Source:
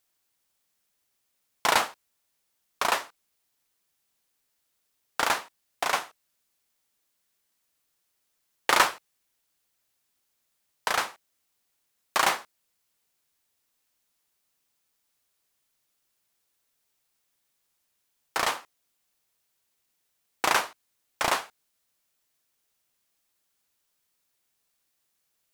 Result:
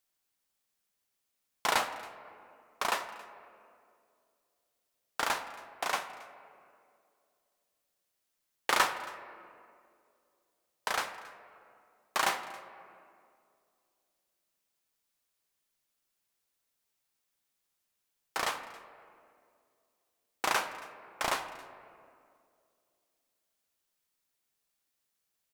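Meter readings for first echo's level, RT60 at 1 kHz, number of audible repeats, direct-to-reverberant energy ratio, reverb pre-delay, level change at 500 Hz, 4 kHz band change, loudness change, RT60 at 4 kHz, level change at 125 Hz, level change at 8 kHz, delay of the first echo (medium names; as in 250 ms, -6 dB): -21.5 dB, 2.1 s, 1, 9.0 dB, 3 ms, -5.5 dB, -6.0 dB, -6.5 dB, 1.2 s, -5.5 dB, -6.0 dB, 274 ms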